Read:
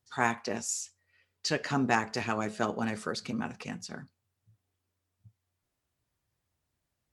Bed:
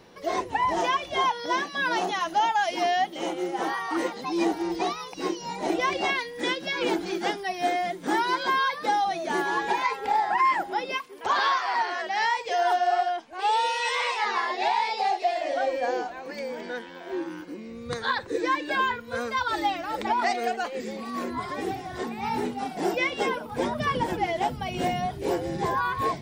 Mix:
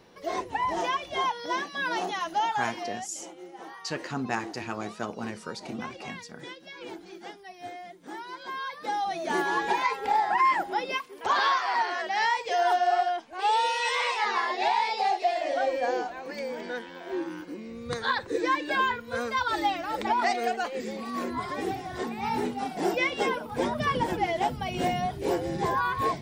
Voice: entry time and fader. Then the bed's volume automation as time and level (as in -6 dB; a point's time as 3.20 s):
2.40 s, -3.5 dB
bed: 2.51 s -3.5 dB
3.03 s -15 dB
8.31 s -15 dB
9.29 s -0.5 dB